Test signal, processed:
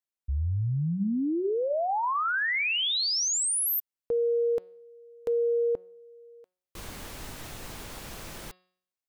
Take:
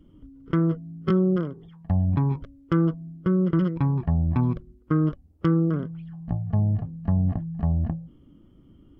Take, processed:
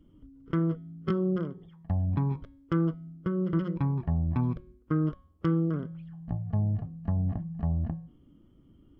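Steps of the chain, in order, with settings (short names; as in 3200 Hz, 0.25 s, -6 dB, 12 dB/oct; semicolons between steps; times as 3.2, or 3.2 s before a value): de-hum 182.7 Hz, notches 27; gain -5 dB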